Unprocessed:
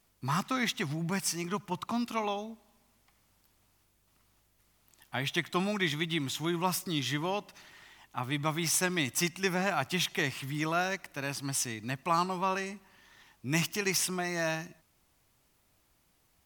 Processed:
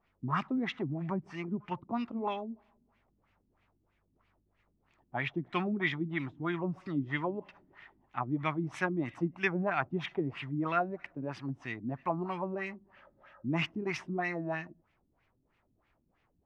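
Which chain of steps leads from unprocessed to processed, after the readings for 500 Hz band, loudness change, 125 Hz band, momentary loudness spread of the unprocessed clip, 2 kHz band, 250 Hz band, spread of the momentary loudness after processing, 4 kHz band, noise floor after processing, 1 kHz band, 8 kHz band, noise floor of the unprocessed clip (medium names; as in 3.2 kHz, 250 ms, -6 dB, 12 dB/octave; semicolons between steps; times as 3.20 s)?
-1.5 dB, -3.0 dB, -1.5 dB, 7 LU, -3.0 dB, 0.0 dB, 8 LU, -11.5 dB, -75 dBFS, -3.0 dB, under -25 dB, -70 dBFS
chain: spectral replace 12.98–13.45 s, 530–1900 Hz after; LFO low-pass sine 3.1 Hz 250–2500 Hz; trim -3 dB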